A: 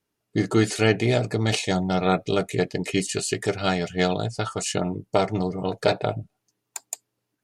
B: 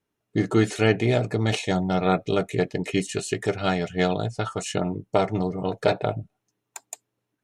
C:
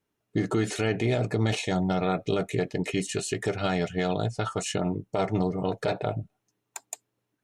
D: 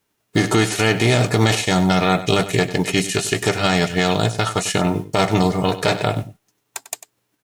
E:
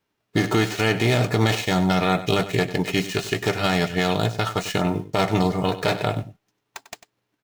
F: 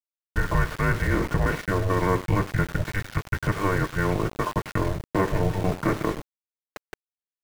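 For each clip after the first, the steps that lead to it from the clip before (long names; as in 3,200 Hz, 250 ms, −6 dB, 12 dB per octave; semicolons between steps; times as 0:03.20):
high-shelf EQ 4,500 Hz −7 dB; notch filter 4,700 Hz, Q 8.1
brickwall limiter −16 dBFS, peak gain reduction 10.5 dB
spectral envelope flattened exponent 0.6; single-tap delay 97 ms −14 dB; level +9 dB
running median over 5 samples; level −3.5 dB
single-sideband voice off tune −290 Hz 210–2,200 Hz; centre clipping without the shift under −32 dBFS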